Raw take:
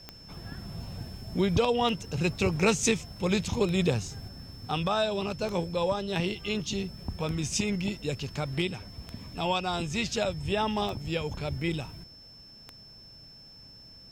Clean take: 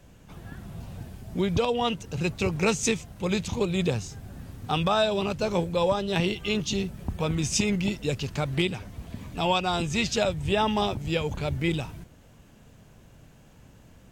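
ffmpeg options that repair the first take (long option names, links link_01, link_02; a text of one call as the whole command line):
ffmpeg -i in.wav -af "adeclick=threshold=4,bandreject=frequency=5300:width=30,asetnsamples=nb_out_samples=441:pad=0,asendcmd='4.28 volume volume 4dB',volume=0dB" out.wav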